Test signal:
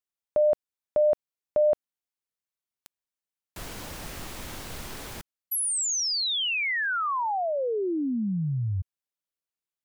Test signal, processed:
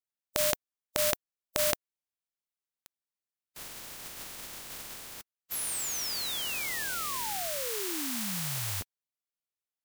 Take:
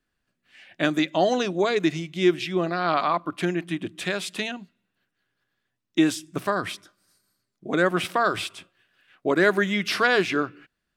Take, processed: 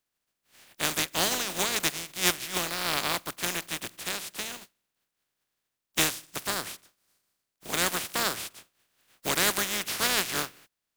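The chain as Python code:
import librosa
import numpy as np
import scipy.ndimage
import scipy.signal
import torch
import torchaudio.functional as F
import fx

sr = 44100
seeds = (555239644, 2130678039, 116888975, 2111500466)

y = fx.spec_flatten(x, sr, power=0.23)
y = y * 10.0 ** (-5.5 / 20.0)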